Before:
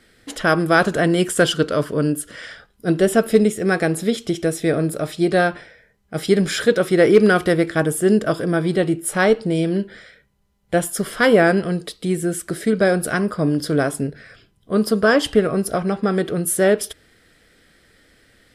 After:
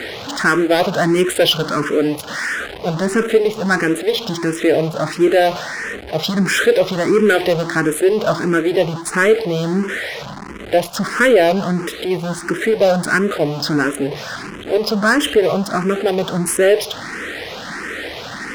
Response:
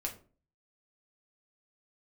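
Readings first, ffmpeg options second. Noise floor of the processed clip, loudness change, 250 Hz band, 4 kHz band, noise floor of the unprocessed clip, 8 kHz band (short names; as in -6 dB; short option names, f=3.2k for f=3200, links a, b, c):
-31 dBFS, +1.5 dB, +0.5 dB, +6.5 dB, -60 dBFS, +0.5 dB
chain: -filter_complex "[0:a]aeval=exprs='val(0)+0.5*0.0631*sgn(val(0))':c=same,highpass=f=320:p=1,equalizer=f=7.6k:t=o:w=0.2:g=-4,asplit=2[a][b];[b]alimiter=limit=-11dB:level=0:latency=1:release=53,volume=-2.5dB[c];[a][c]amix=inputs=2:normalize=0,adynamicsmooth=sensitivity=2.5:basefreq=1.1k,asoftclip=type=tanh:threshold=-7dB,asplit=2[d][e];[e]afreqshift=1.5[f];[d][f]amix=inputs=2:normalize=1,volume=3.5dB"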